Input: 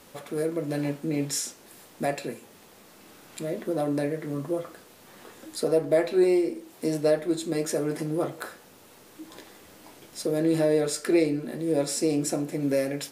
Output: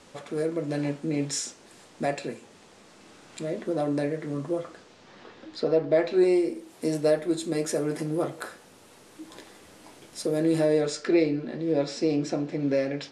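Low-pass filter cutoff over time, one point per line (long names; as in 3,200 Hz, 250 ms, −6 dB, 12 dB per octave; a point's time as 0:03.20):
low-pass filter 24 dB per octave
0:04.59 8,500 Hz
0:05.37 4,900 Hz
0:05.88 4,900 Hz
0:06.49 11,000 Hz
0:10.56 11,000 Hz
0:11.15 5,200 Hz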